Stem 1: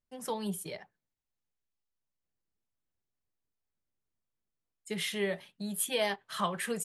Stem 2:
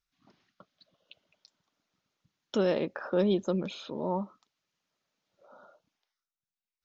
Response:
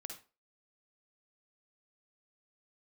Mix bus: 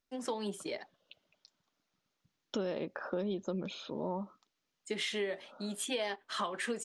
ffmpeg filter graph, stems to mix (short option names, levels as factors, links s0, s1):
-filter_complex "[0:a]lowpass=f=7800:w=0.5412,lowpass=f=7800:w=1.3066,lowshelf=f=210:t=q:w=3:g=-7,volume=1.26[s0];[1:a]volume=0.794[s1];[s0][s1]amix=inputs=2:normalize=0,acompressor=threshold=0.0251:ratio=6"